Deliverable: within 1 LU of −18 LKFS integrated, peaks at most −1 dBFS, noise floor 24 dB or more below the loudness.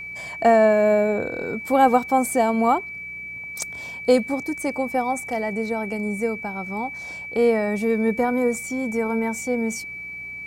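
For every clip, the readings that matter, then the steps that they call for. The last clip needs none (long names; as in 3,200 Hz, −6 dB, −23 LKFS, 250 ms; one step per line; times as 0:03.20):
mains hum 60 Hz; hum harmonics up to 180 Hz; level of the hum −52 dBFS; interfering tone 2,300 Hz; level of the tone −32 dBFS; integrated loudness −22.5 LKFS; sample peak −4.0 dBFS; target loudness −18.0 LKFS
→ hum removal 60 Hz, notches 3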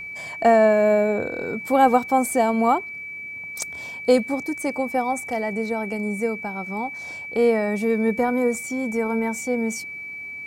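mains hum none found; interfering tone 2,300 Hz; level of the tone −32 dBFS
→ notch filter 2,300 Hz, Q 30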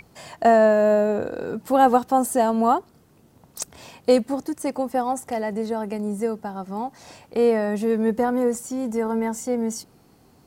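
interfering tone none found; integrated loudness −22.5 LKFS; sample peak −4.0 dBFS; target loudness −18.0 LKFS
→ level +4.5 dB
brickwall limiter −1 dBFS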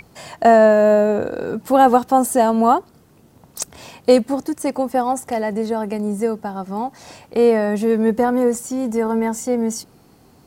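integrated loudness −18.0 LKFS; sample peak −1.0 dBFS; background noise floor −51 dBFS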